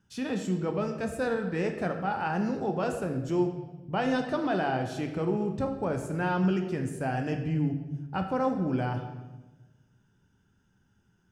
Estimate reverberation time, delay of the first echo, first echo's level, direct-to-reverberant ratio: 1.1 s, no echo, no echo, 4.0 dB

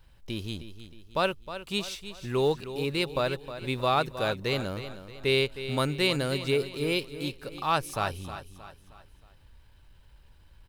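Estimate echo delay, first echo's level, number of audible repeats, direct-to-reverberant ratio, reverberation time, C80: 313 ms, -12.0 dB, 4, no reverb, no reverb, no reverb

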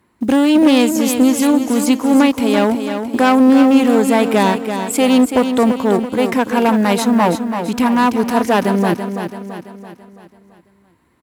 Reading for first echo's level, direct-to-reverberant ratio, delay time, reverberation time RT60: -8.0 dB, no reverb, 334 ms, no reverb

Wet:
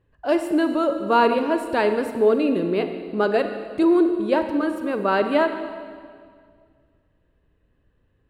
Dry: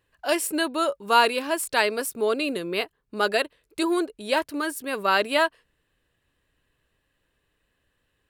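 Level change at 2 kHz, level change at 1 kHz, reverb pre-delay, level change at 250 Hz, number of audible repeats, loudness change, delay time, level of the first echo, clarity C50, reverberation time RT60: -3.0 dB, +1.0 dB, 34 ms, +8.5 dB, no echo, +3.5 dB, no echo, no echo, 8.0 dB, 2.0 s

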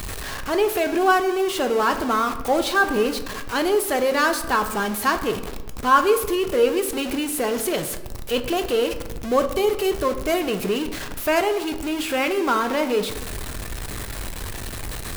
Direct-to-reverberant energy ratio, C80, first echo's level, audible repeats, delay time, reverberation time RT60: 7.0 dB, 13.0 dB, no echo, no echo, no echo, 1.1 s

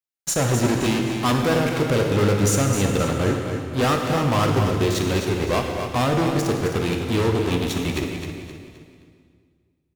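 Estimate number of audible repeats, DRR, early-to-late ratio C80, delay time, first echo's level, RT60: 4, 1.0 dB, 3.0 dB, 261 ms, -7.5 dB, 2.1 s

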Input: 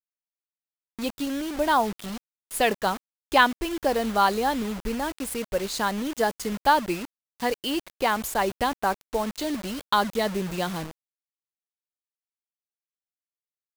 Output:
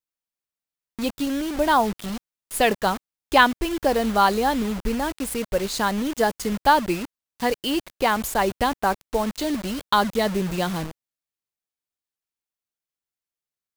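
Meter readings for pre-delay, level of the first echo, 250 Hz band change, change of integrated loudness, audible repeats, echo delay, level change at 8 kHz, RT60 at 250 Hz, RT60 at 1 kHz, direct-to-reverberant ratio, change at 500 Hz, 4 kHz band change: no reverb, no echo, +4.0 dB, +3.0 dB, no echo, no echo, +2.5 dB, no reverb, no reverb, no reverb, +3.0 dB, +2.5 dB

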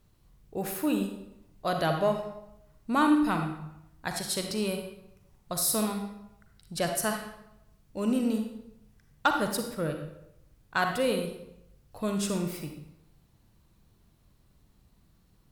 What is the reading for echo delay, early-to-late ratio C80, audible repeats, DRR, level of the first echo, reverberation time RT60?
no echo, 8.0 dB, no echo, 4.0 dB, no echo, 0.85 s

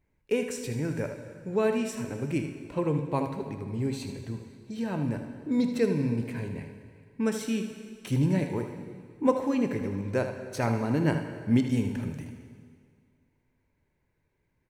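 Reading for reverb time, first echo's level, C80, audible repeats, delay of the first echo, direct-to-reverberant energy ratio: 2.0 s, -9.5 dB, 8.5 dB, 1, 78 ms, 4.5 dB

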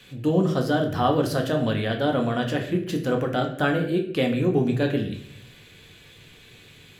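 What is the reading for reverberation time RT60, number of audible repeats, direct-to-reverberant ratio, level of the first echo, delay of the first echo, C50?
0.65 s, no echo, 2.0 dB, no echo, no echo, 9.0 dB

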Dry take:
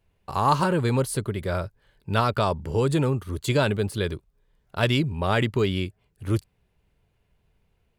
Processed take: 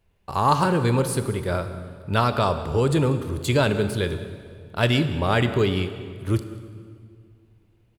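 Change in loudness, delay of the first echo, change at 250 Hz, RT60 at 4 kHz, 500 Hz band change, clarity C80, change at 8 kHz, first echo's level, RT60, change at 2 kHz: +2.0 dB, 189 ms, +2.5 dB, 1.7 s, +2.0 dB, 11.0 dB, +2.0 dB, -20.0 dB, 2.1 s, +2.0 dB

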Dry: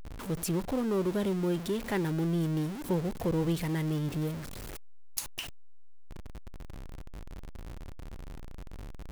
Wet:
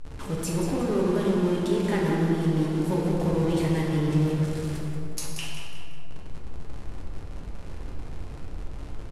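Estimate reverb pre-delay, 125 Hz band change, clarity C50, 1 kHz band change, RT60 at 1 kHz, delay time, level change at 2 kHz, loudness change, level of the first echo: 7 ms, +6.5 dB, -1.0 dB, +6.5 dB, 2.5 s, 182 ms, +5.0 dB, +6.0 dB, -7.5 dB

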